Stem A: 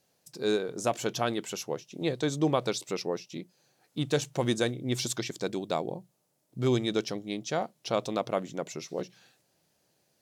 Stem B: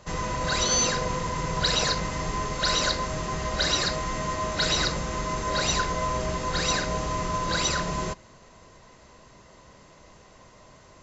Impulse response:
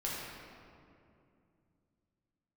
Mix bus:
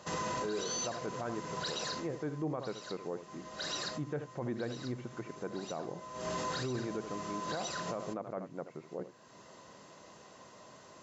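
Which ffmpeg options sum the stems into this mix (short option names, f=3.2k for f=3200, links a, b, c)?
-filter_complex "[0:a]lowpass=f=1.8k:w=0.5412,lowpass=f=1.8k:w=1.3066,volume=-7dB,asplit=3[a][b][c];[b]volume=-12.5dB[d];[1:a]highpass=170,equalizer=f=2.2k:w=7:g=-7,volume=10dB,afade=t=out:st=1.58:d=0.77:silence=0.266073,afade=t=in:st=6.14:d=0.26:silence=0.298538[e];[c]apad=whole_len=486368[f];[e][f]sidechaincompress=threshold=-50dB:ratio=4:attack=37:release=390[g];[d]aecho=0:1:78:1[h];[a][g][h]amix=inputs=3:normalize=0,alimiter=level_in=4dB:limit=-24dB:level=0:latency=1:release=14,volume=-4dB"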